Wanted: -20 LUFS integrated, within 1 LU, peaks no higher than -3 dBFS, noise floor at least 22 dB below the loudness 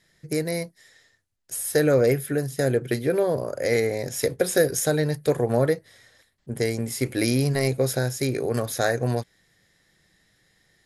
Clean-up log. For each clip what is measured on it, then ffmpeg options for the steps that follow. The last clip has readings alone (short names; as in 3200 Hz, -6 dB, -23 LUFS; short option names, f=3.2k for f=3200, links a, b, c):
loudness -24.5 LUFS; peak -8.0 dBFS; loudness target -20.0 LUFS
-> -af "volume=4.5dB"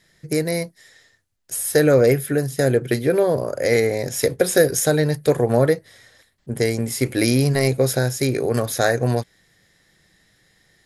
loudness -20.0 LUFS; peak -3.5 dBFS; noise floor -61 dBFS